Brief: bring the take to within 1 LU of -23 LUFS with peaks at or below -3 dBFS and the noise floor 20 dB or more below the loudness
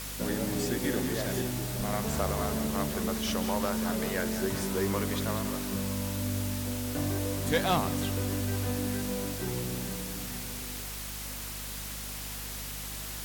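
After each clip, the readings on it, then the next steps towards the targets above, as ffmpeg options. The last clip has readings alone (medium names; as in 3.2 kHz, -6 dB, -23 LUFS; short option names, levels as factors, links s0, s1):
hum 50 Hz; highest harmonic 250 Hz; hum level -41 dBFS; noise floor -39 dBFS; noise floor target -52 dBFS; loudness -31.5 LUFS; peak level -17.0 dBFS; loudness target -23.0 LUFS
-> -af "bandreject=f=50:t=h:w=6,bandreject=f=100:t=h:w=6,bandreject=f=150:t=h:w=6,bandreject=f=200:t=h:w=6,bandreject=f=250:t=h:w=6"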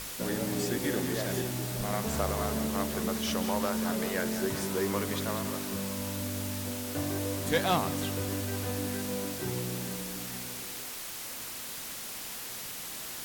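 hum not found; noise floor -40 dBFS; noise floor target -53 dBFS
-> -af "afftdn=nr=13:nf=-40"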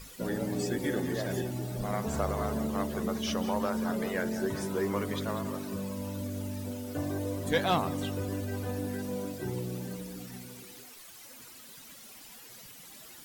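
noise floor -50 dBFS; noise floor target -53 dBFS
-> -af "afftdn=nr=6:nf=-50"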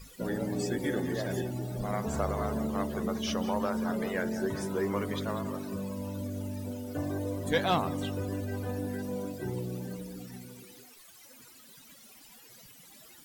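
noise floor -54 dBFS; loudness -33.0 LUFS; peak level -17.0 dBFS; loudness target -23.0 LUFS
-> -af "volume=3.16"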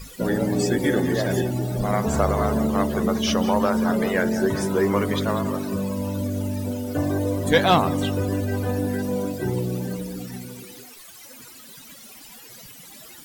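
loudness -23.0 LUFS; peak level -7.0 dBFS; noise floor -44 dBFS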